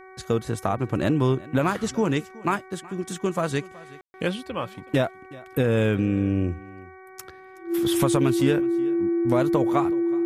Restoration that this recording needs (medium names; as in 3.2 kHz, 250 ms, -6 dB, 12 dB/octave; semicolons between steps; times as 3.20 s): de-hum 376.7 Hz, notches 6; band-stop 340 Hz, Q 30; room tone fill 4.01–4.14 s; inverse comb 372 ms -21 dB